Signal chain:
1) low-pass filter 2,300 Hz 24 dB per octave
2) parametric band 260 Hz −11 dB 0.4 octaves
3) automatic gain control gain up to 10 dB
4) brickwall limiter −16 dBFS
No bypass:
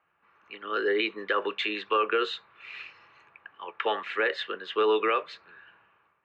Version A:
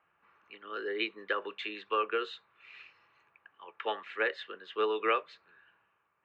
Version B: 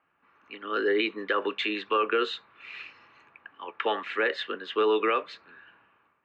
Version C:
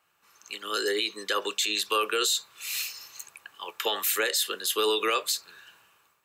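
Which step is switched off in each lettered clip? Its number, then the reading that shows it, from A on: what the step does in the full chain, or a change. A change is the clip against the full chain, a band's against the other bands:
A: 3, change in crest factor +6.0 dB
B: 2, 250 Hz band +3.0 dB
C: 1, 4 kHz band +10.5 dB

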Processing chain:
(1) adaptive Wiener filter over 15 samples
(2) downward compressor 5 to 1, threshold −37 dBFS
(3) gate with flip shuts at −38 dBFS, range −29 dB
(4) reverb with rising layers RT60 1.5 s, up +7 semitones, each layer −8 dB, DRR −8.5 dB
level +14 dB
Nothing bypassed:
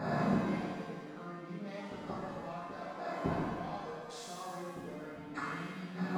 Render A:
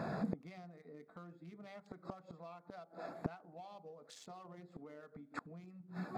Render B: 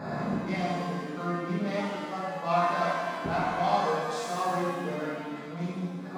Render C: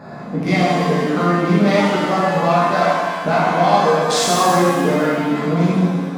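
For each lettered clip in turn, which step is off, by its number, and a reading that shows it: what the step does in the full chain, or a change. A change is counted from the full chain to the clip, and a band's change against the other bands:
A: 4, change in crest factor +6.0 dB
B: 2, average gain reduction 11.0 dB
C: 3, change in momentary loudness spread −7 LU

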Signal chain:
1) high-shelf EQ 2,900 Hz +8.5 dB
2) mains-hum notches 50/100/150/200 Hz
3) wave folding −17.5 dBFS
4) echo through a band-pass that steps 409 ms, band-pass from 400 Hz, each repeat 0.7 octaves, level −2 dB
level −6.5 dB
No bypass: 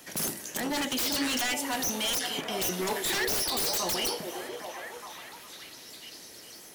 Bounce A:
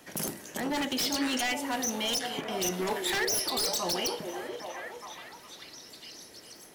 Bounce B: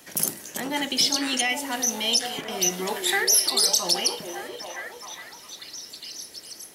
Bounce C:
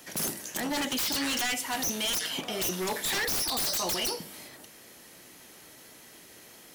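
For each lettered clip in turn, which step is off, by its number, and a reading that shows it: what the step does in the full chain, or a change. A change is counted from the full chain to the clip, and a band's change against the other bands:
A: 1, 8 kHz band −1.5 dB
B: 3, change in crest factor +8.0 dB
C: 4, echo-to-direct ratio −6.5 dB to none audible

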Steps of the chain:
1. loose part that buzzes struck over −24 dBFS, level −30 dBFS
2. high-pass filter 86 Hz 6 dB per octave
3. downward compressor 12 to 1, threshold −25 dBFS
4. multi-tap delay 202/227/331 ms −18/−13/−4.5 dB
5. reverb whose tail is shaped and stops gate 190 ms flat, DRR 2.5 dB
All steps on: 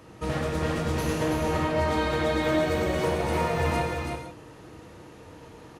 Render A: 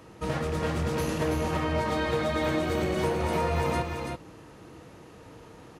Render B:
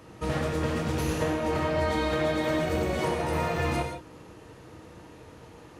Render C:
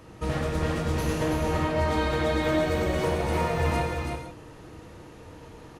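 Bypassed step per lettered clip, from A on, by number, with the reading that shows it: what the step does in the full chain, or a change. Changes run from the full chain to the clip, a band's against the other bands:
5, echo-to-direct ratio 1.0 dB to −4.0 dB
4, echo-to-direct ratio 1.0 dB to −2.5 dB
2, 125 Hz band +2.0 dB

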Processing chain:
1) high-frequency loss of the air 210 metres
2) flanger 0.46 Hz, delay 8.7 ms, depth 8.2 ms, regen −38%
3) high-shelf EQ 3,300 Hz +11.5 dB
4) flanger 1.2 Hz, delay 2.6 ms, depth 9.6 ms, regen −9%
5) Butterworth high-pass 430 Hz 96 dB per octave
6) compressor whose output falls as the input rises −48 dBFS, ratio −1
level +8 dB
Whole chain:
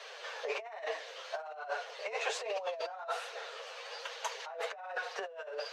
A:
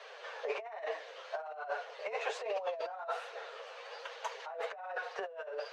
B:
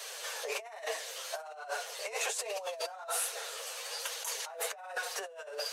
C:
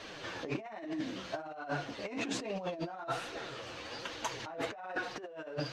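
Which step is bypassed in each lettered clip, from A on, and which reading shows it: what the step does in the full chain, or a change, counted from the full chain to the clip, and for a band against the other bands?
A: 3, 8 kHz band −8.0 dB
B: 1, 8 kHz band +13.5 dB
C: 5, change in momentary loudness spread −1 LU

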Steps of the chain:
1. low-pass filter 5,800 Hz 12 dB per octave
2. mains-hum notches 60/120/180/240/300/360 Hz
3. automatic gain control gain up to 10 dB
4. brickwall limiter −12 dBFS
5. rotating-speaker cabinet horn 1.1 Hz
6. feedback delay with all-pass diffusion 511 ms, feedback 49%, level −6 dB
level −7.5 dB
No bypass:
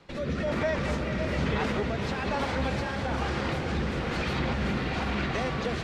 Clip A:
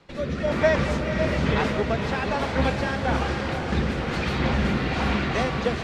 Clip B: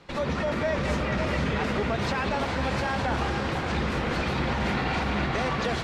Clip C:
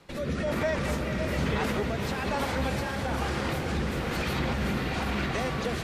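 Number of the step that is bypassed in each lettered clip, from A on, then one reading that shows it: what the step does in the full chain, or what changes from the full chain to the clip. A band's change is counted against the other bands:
4, average gain reduction 4.0 dB
5, change in integrated loudness +2.0 LU
1, 8 kHz band +5.0 dB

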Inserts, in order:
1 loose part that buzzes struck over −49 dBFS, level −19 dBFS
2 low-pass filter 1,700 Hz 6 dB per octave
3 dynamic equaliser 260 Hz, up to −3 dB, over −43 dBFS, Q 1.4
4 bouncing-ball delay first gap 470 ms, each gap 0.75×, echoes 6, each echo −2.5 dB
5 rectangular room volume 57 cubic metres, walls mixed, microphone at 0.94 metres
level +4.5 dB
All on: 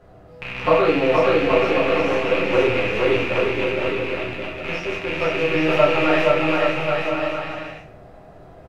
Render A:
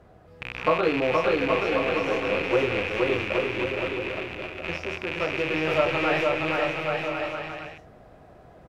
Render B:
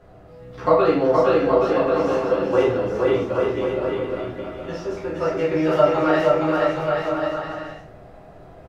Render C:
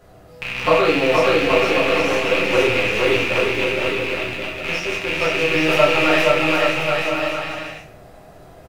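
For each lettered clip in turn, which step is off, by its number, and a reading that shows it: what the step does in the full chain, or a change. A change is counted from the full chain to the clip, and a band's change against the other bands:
5, echo-to-direct ratio 8.0 dB to 1.0 dB
1, 4 kHz band −8.5 dB
2, change in integrated loudness +2.0 LU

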